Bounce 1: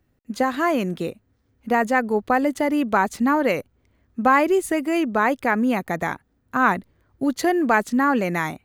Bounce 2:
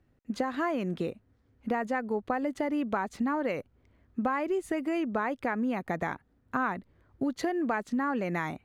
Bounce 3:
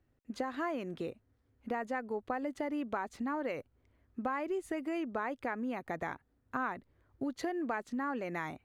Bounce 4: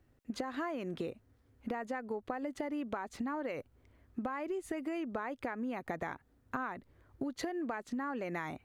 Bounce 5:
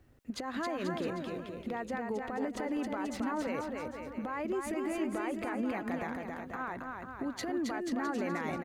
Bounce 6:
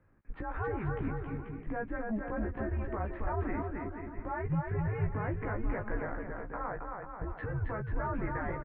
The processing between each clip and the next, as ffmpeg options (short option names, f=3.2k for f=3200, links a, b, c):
-af "aemphasis=mode=reproduction:type=50kf,acompressor=threshold=-27dB:ratio=4,volume=-1dB"
-af "equalizer=f=190:t=o:w=0.42:g=-7,volume=-5.5dB"
-af "acompressor=threshold=-40dB:ratio=6,volume=5.5dB"
-af "alimiter=level_in=9.5dB:limit=-24dB:level=0:latency=1:release=126,volume=-9.5dB,aecho=1:1:270|486|658.8|797|907.6:0.631|0.398|0.251|0.158|0.1,volume=5.5dB"
-filter_complex "[0:a]asplit=2[a][b];[b]adelay=16,volume=-4dB[c];[a][c]amix=inputs=2:normalize=0,highpass=f=180:t=q:w=0.5412,highpass=f=180:t=q:w=1.307,lowpass=f=2.3k:t=q:w=0.5176,lowpass=f=2.3k:t=q:w=0.7071,lowpass=f=2.3k:t=q:w=1.932,afreqshift=-220"